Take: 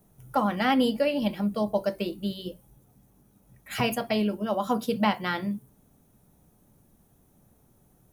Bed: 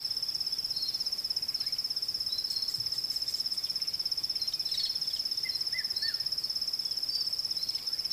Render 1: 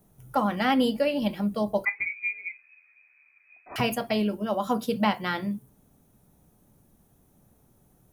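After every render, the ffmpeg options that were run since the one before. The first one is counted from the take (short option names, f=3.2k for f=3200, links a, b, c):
-filter_complex "[0:a]asettb=1/sr,asplit=3[a][b][c];[a]atrim=end=1.854[d];[b]atrim=start=1.85:end=3.76,asetpts=PTS-STARTPTS,afade=t=in:d=0.004:c=qsin,afade=t=out:st=1.906:d=0.004:c=qsin,lowpass=f=2.2k:t=q:w=0.5098,lowpass=f=2.2k:t=q:w=0.6013,lowpass=f=2.2k:t=q:w=0.9,lowpass=f=2.2k:t=q:w=2.563,afreqshift=-2600[e];[c]atrim=start=3.756[f];[d][e]acrossfade=d=0.004:c1=hsin:c2=qsin[g];[g][f]acrossfade=d=0.004:c1=qsin:c2=hsin"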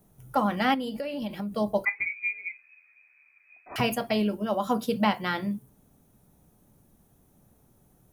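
-filter_complex "[0:a]asettb=1/sr,asplit=3[a][b][c];[a]atrim=end=0.744[d];[b]atrim=start=0.74:end=1.54,asetpts=PTS-STARTPTS,afade=t=in:d=0.004:c=qsin,afade=t=out:st=0.796:d=0.004:c=qsin,acompressor=threshold=-29dB:ratio=6:attack=3.2:release=140:knee=1:detection=peak[e];[c]atrim=start=1.536[f];[d][e]acrossfade=d=0.004:c1=hsin:c2=qsin[g];[g][f]acrossfade=d=0.004:c1=qsin:c2=hsin"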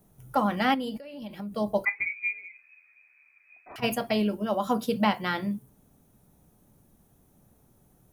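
-filter_complex "[0:a]asplit=3[a][b][c];[a]afade=t=out:st=2.38:d=0.02[d];[b]acompressor=threshold=-40dB:ratio=10:attack=3.2:release=140:knee=1:detection=peak,afade=t=in:st=2.38:d=0.02,afade=t=out:st=3.82:d=0.02[e];[c]afade=t=in:st=3.82:d=0.02[f];[d][e][f]amix=inputs=3:normalize=0,asplit=2[g][h];[g]atrim=end=0.98,asetpts=PTS-STARTPTS,afade=t=out:st=0.976:d=0.004:c=hsin:silence=0.223872[i];[h]atrim=start=0.98,asetpts=PTS-STARTPTS,afade=t=in:d=0.79:silence=0.223872[j];[i][j]concat=n=2:v=0:a=1"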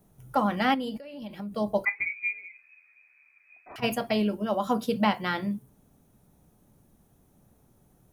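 -af "highshelf=f=10k:g=-4.5"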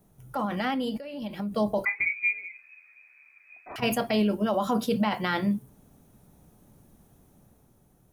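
-af "alimiter=limit=-21.5dB:level=0:latency=1:release=19,dynaudnorm=f=120:g=13:m=4.5dB"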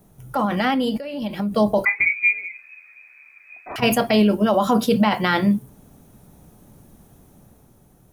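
-af "volume=8dB"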